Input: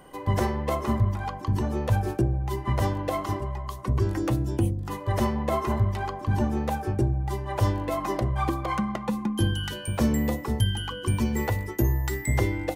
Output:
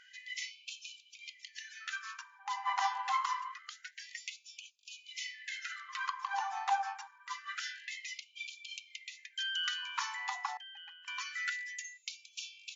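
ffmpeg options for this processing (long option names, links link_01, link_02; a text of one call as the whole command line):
ffmpeg -i in.wav -filter_complex "[0:a]asettb=1/sr,asplit=3[link_01][link_02][link_03];[link_01]atrim=end=10.574[link_04];[link_02]atrim=start=10.57:end=11.08,asetpts=PTS-STARTPTS,afade=type=in:duration=0.004:curve=qsin,afade=type=out:start_time=0.506:duration=0.004:curve=qsin,asplit=3[link_05][link_06][link_07];[link_05]bandpass=frequency=530:width_type=q:width=8,volume=0dB[link_08];[link_06]bandpass=frequency=1840:width_type=q:width=8,volume=-6dB[link_09];[link_07]bandpass=frequency=2480:width_type=q:width=8,volume=-9dB[link_10];[link_08][link_09][link_10]amix=inputs=3:normalize=0[link_11];[link_03]atrim=start=11.076[link_12];[link_04][link_11]acrossfade=duration=0.004:curve1=hsin:curve2=qsin[link_13];[link_13][link_12]acrossfade=duration=0.004:curve1=qsin:curve2=hsin,afftfilt=real='re*between(b*sr/4096,330,7300)':imag='im*between(b*sr/4096,330,7300)':win_size=4096:overlap=0.75,afftfilt=real='re*gte(b*sr/1024,720*pow(2300/720,0.5+0.5*sin(2*PI*0.26*pts/sr)))':imag='im*gte(b*sr/1024,720*pow(2300/720,0.5+0.5*sin(2*PI*0.26*pts/sr)))':win_size=1024:overlap=0.75,volume=1dB" out.wav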